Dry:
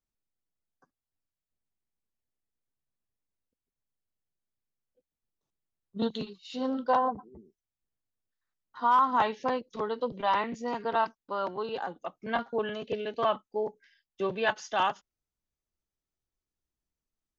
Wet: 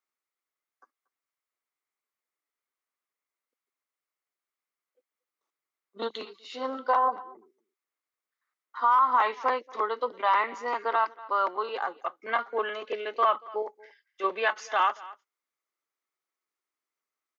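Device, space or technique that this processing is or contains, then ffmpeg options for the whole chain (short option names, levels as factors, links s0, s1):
laptop speaker: -filter_complex "[0:a]asettb=1/sr,asplit=3[s0][s1][s2];[s0]atrim=end=13.624[s3];[s1]atrim=start=13.62:end=14.24,asetpts=PTS-STARTPTS,afade=t=in:d=0.004:c=qsin,afade=t=out:st=0.616:d=0.004:c=qsin,lowshelf=f=430:g=-10[s4];[s2]atrim=start=14.236[s5];[s3][s4]acrossfade=d=0.004:c1=hsin:c2=qsin[s6];[s6][s5]acrossfade=d=0.004:c1=qsin:c2=hsin,highpass=f=330:w=0.5412,highpass=f=330:w=1.3066,equalizer=f=1200:t=o:w=0.59:g=11,equalizer=f=2100:t=o:w=0.33:g=10,aecho=1:1:233:0.0708,alimiter=limit=0.2:level=0:latency=1:release=88"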